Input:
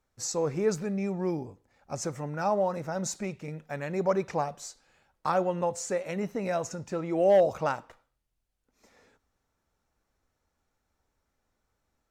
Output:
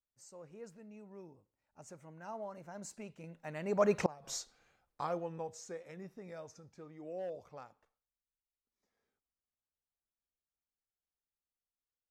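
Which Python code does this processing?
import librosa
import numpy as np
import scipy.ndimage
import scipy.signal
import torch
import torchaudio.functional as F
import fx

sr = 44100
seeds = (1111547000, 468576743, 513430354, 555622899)

y = fx.doppler_pass(x, sr, speed_mps=24, closest_m=2.5, pass_at_s=4.15)
y = fx.gate_flip(y, sr, shuts_db=-24.0, range_db=-28)
y = F.gain(torch.from_numpy(y), 8.0).numpy()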